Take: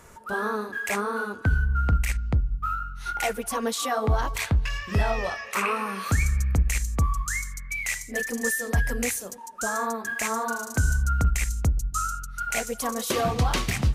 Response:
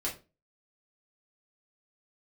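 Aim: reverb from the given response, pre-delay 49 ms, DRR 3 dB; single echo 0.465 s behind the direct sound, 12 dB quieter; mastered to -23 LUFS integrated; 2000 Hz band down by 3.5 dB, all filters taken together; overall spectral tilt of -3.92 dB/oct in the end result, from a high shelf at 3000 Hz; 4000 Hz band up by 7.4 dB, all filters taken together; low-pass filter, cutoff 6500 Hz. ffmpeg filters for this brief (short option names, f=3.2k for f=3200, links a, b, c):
-filter_complex "[0:a]lowpass=6.5k,equalizer=f=2k:t=o:g=-8.5,highshelf=f=3k:g=5,equalizer=f=4k:t=o:g=8.5,aecho=1:1:465:0.251,asplit=2[a][b];[1:a]atrim=start_sample=2205,adelay=49[c];[b][c]afir=irnorm=-1:irlink=0,volume=-7dB[d];[a][d]amix=inputs=2:normalize=0,volume=1.5dB"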